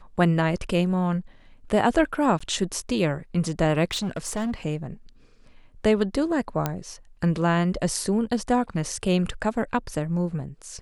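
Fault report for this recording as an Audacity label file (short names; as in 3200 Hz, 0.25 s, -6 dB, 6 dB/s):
2.390000	2.400000	gap 15 ms
3.910000	4.540000	clipped -23.5 dBFS
6.660000	6.660000	pop -10 dBFS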